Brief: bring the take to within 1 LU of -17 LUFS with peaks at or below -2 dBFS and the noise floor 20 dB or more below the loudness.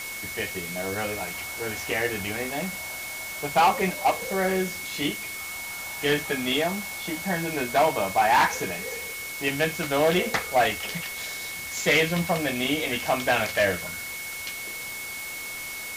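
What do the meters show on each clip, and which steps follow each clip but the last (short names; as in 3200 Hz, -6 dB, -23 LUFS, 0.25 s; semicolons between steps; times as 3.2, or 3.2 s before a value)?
steady tone 2200 Hz; tone level -35 dBFS; noise floor -35 dBFS; noise floor target -46 dBFS; loudness -26.0 LUFS; peak -12.5 dBFS; loudness target -17.0 LUFS
-> notch 2200 Hz, Q 30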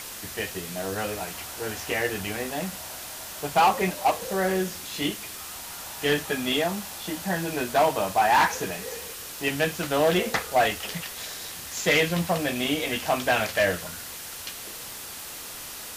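steady tone none; noise floor -39 dBFS; noise floor target -47 dBFS
-> denoiser 8 dB, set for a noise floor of -39 dBFS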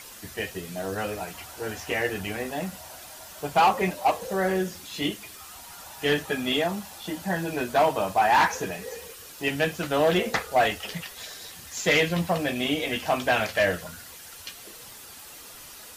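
noise floor -45 dBFS; noise floor target -46 dBFS
-> denoiser 6 dB, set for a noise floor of -45 dBFS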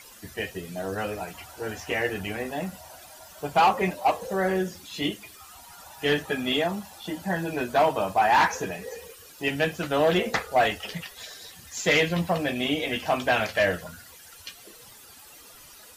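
noise floor -49 dBFS; loudness -26.0 LUFS; peak -12.5 dBFS; loudness target -17.0 LUFS
-> gain +9 dB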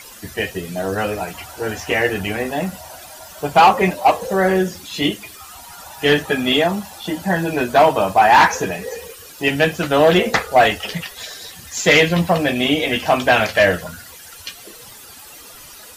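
loudness -17.0 LUFS; peak -3.5 dBFS; noise floor -40 dBFS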